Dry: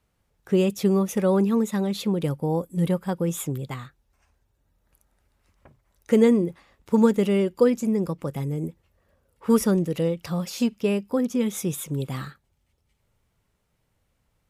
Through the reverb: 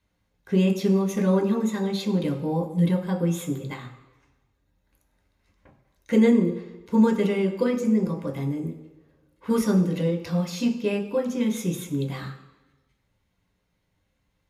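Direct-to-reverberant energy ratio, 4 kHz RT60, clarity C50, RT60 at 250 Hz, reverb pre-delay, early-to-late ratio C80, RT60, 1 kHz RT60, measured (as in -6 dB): 2.0 dB, 1.1 s, 10.0 dB, 1.0 s, 8 ms, 11.5 dB, 1.1 s, 1.0 s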